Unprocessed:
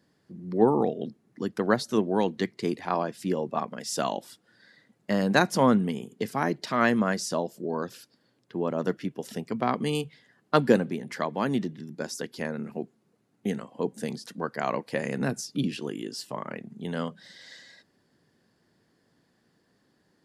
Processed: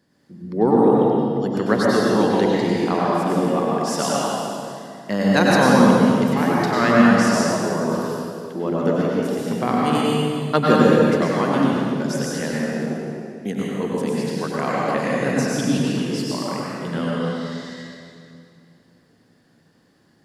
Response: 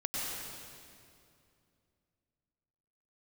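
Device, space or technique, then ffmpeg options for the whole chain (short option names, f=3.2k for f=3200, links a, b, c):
stairwell: -filter_complex "[1:a]atrim=start_sample=2205[a];[0:a][a]afir=irnorm=-1:irlink=0,volume=3.5dB"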